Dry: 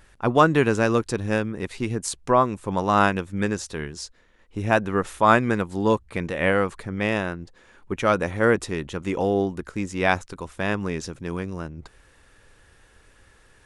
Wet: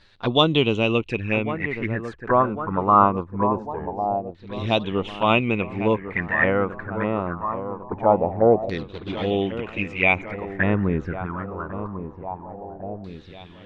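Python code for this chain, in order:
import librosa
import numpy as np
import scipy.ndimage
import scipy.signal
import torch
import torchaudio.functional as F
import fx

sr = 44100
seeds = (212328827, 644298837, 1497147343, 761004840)

y = fx.median_filter(x, sr, points=41, at=(8.78, 9.31))
y = fx.low_shelf(y, sr, hz=330.0, db=9.0, at=(10.51, 11.25), fade=0.02)
y = fx.env_flanger(y, sr, rest_ms=10.9, full_db=-20.0)
y = fx.echo_filtered(y, sr, ms=1100, feedback_pct=59, hz=3900.0, wet_db=-11.0)
y = fx.filter_lfo_lowpass(y, sr, shape='saw_down', hz=0.23, low_hz=670.0, high_hz=4200.0, q=7.0)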